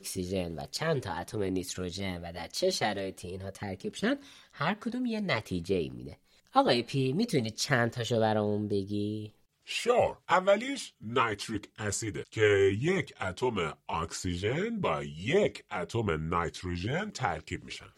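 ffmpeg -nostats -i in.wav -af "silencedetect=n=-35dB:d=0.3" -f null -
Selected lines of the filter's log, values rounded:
silence_start: 4.15
silence_end: 4.61 | silence_duration: 0.45
silence_start: 6.13
silence_end: 6.55 | silence_duration: 0.43
silence_start: 9.26
silence_end: 9.69 | silence_duration: 0.43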